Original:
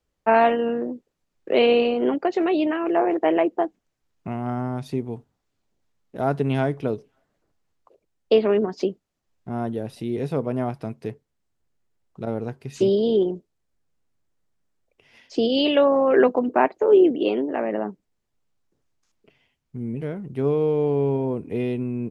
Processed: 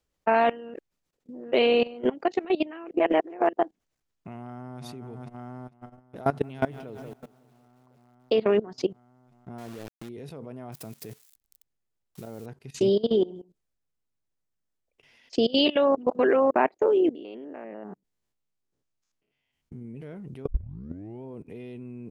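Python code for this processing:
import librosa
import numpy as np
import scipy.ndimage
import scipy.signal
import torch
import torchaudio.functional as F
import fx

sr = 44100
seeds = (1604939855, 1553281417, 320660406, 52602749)

y = fx.echo_throw(x, sr, start_s=4.36, length_s=0.47, ms=450, feedback_pct=80, wet_db=-10.0)
y = fx.echo_crushed(y, sr, ms=184, feedback_pct=55, bits=8, wet_db=-14.0, at=(6.25, 8.42))
y = fx.sample_gate(y, sr, floor_db=-31.0, at=(9.58, 10.09))
y = fx.crossing_spikes(y, sr, level_db=-32.5, at=(10.72, 12.46))
y = fx.echo_single(y, sr, ms=133, db=-16.0, at=(13.09, 15.45), fade=0.02)
y = fx.spec_steps(y, sr, hold_ms=100, at=(17.15, 19.85))
y = fx.edit(y, sr, fx.reverse_span(start_s=0.74, length_s=0.78),
    fx.reverse_span(start_s=2.91, length_s=0.62),
    fx.reverse_span(start_s=15.96, length_s=0.55),
    fx.tape_start(start_s=20.47, length_s=0.76), tone=tone)
y = fx.high_shelf(y, sr, hz=2300.0, db=4.0)
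y = fx.level_steps(y, sr, step_db=20)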